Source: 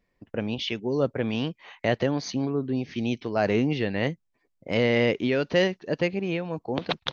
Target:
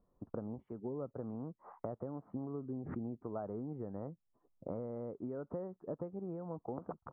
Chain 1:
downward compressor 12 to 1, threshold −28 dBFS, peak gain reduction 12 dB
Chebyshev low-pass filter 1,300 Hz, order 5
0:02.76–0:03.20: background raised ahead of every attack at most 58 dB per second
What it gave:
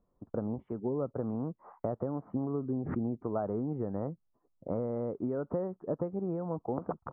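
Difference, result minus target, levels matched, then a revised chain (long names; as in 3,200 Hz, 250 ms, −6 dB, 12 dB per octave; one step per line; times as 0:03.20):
downward compressor: peak gain reduction −8 dB
downward compressor 12 to 1, threshold −37 dBFS, peak gain reduction 20 dB
Chebyshev low-pass filter 1,300 Hz, order 5
0:02.76–0:03.20: background raised ahead of every attack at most 58 dB per second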